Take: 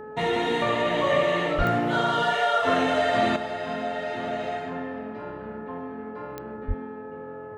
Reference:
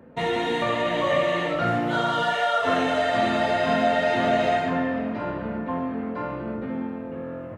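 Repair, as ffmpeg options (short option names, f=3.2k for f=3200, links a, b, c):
-filter_complex "[0:a]adeclick=t=4,bandreject=f=427.7:t=h:w=4,bandreject=f=855.4:t=h:w=4,bandreject=f=1.2831k:t=h:w=4,bandreject=f=1.7108k:t=h:w=4,asplit=3[a][b][c];[a]afade=t=out:st=1.57:d=0.02[d];[b]highpass=f=140:w=0.5412,highpass=f=140:w=1.3066,afade=t=in:st=1.57:d=0.02,afade=t=out:st=1.69:d=0.02[e];[c]afade=t=in:st=1.69:d=0.02[f];[d][e][f]amix=inputs=3:normalize=0,asplit=3[g][h][i];[g]afade=t=out:st=6.67:d=0.02[j];[h]highpass=f=140:w=0.5412,highpass=f=140:w=1.3066,afade=t=in:st=6.67:d=0.02,afade=t=out:st=6.79:d=0.02[k];[i]afade=t=in:st=6.79:d=0.02[l];[j][k][l]amix=inputs=3:normalize=0,asetnsamples=n=441:p=0,asendcmd='3.36 volume volume 9dB',volume=0dB"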